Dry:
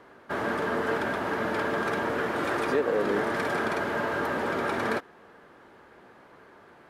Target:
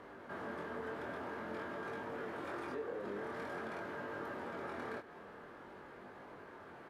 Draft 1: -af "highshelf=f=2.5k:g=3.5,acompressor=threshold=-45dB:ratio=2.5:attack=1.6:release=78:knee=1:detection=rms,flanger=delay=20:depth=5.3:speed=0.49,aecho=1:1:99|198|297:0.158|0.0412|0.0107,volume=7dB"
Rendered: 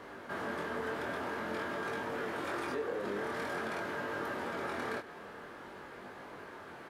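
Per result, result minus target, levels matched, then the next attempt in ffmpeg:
compressor: peak gain reduction -5 dB; 4000 Hz band +4.5 dB
-af "highshelf=f=2.5k:g=3.5,acompressor=threshold=-54dB:ratio=2.5:attack=1.6:release=78:knee=1:detection=rms,flanger=delay=20:depth=5.3:speed=0.49,aecho=1:1:99|198|297:0.158|0.0412|0.0107,volume=7dB"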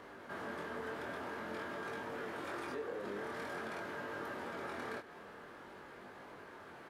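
4000 Hz band +4.5 dB
-af "highshelf=f=2.5k:g=-5,acompressor=threshold=-54dB:ratio=2.5:attack=1.6:release=78:knee=1:detection=rms,flanger=delay=20:depth=5.3:speed=0.49,aecho=1:1:99|198|297:0.158|0.0412|0.0107,volume=7dB"

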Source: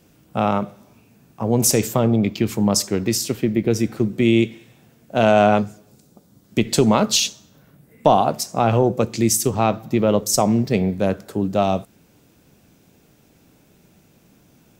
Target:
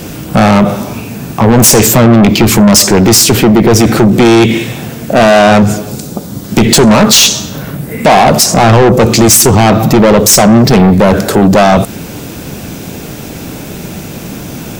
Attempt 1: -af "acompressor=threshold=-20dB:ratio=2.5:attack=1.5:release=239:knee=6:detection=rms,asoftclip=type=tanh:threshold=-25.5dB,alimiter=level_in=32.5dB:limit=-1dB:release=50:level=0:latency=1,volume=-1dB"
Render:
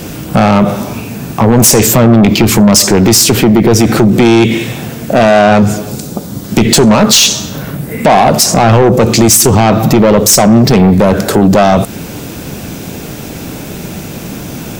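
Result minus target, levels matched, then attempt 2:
compressor: peak gain reduction +5.5 dB
-af "acompressor=threshold=-10.5dB:ratio=2.5:attack=1.5:release=239:knee=6:detection=rms,asoftclip=type=tanh:threshold=-25.5dB,alimiter=level_in=32.5dB:limit=-1dB:release=50:level=0:latency=1,volume=-1dB"

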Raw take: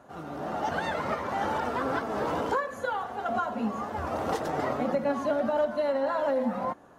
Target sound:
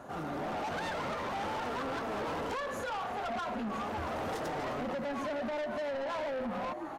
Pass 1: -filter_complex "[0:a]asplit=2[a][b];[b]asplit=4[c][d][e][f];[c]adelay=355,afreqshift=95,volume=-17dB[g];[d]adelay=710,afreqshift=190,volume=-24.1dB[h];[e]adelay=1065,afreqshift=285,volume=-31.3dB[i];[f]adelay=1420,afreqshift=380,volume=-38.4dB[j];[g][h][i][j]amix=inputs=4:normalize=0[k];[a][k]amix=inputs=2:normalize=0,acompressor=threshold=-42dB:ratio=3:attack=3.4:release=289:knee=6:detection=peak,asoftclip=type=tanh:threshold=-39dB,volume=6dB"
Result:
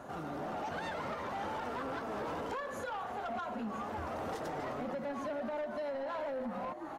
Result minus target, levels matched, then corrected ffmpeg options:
compressor: peak gain reduction +6.5 dB
-filter_complex "[0:a]asplit=2[a][b];[b]asplit=4[c][d][e][f];[c]adelay=355,afreqshift=95,volume=-17dB[g];[d]adelay=710,afreqshift=190,volume=-24.1dB[h];[e]adelay=1065,afreqshift=285,volume=-31.3dB[i];[f]adelay=1420,afreqshift=380,volume=-38.4dB[j];[g][h][i][j]amix=inputs=4:normalize=0[k];[a][k]amix=inputs=2:normalize=0,acompressor=threshold=-32dB:ratio=3:attack=3.4:release=289:knee=6:detection=peak,asoftclip=type=tanh:threshold=-39dB,volume=6dB"

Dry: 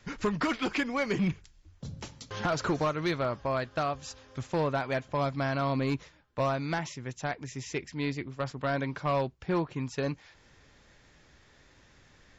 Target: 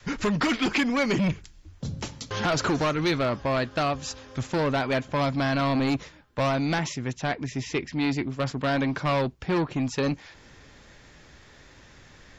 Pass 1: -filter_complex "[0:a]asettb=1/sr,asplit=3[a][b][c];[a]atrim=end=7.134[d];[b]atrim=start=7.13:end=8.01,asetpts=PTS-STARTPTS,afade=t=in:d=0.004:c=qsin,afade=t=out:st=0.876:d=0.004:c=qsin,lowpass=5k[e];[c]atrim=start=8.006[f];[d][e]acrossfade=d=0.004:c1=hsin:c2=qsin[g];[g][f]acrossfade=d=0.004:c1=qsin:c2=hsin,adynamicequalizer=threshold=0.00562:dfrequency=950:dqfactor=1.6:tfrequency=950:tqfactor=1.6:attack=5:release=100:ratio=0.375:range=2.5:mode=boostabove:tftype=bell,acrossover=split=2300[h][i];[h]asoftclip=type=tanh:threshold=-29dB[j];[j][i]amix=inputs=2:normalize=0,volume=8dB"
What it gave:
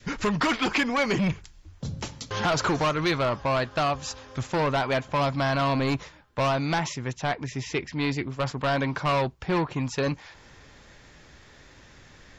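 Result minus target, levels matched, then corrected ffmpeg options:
250 Hz band -2.5 dB
-filter_complex "[0:a]asettb=1/sr,asplit=3[a][b][c];[a]atrim=end=7.134[d];[b]atrim=start=7.13:end=8.01,asetpts=PTS-STARTPTS,afade=t=in:d=0.004:c=qsin,afade=t=out:st=0.876:d=0.004:c=qsin,lowpass=5k[e];[c]atrim=start=8.006[f];[d][e]acrossfade=d=0.004:c1=hsin:c2=qsin[g];[g][f]acrossfade=d=0.004:c1=qsin:c2=hsin,adynamicequalizer=threshold=0.00562:dfrequency=260:dqfactor=1.6:tfrequency=260:tqfactor=1.6:attack=5:release=100:ratio=0.375:range=2.5:mode=boostabove:tftype=bell,acrossover=split=2300[h][i];[h]asoftclip=type=tanh:threshold=-29dB[j];[j][i]amix=inputs=2:normalize=0,volume=8dB"

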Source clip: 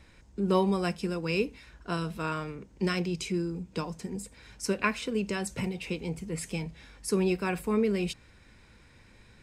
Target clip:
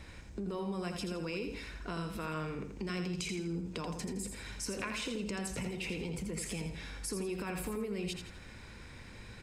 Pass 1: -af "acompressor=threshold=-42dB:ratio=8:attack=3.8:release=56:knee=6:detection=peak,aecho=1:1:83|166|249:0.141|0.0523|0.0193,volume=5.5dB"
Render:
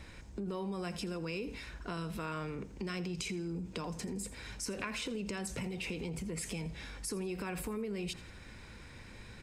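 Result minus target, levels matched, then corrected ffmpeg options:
echo-to-direct -10.5 dB
-af "acompressor=threshold=-42dB:ratio=8:attack=3.8:release=56:knee=6:detection=peak,aecho=1:1:83|166|249|332:0.473|0.175|0.0648|0.024,volume=5.5dB"

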